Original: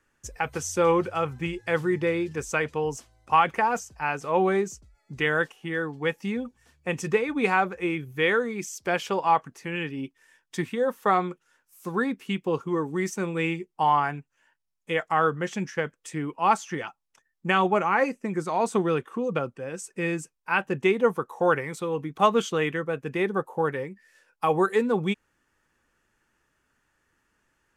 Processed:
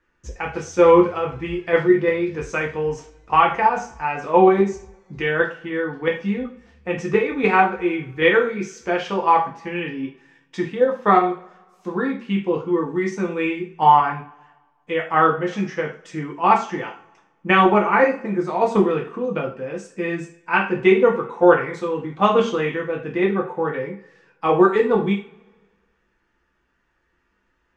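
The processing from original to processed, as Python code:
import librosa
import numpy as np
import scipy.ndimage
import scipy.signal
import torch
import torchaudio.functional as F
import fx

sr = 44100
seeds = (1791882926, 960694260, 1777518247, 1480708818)

p1 = fx.level_steps(x, sr, step_db=22)
p2 = x + (p1 * 10.0 ** (1.0 / 20.0))
p3 = fx.air_absorb(p2, sr, metres=160.0)
p4 = fx.rev_double_slope(p3, sr, seeds[0], early_s=0.37, late_s=1.5, knee_db=-25, drr_db=-1.5)
y = p4 * 10.0 ** (-1.0 / 20.0)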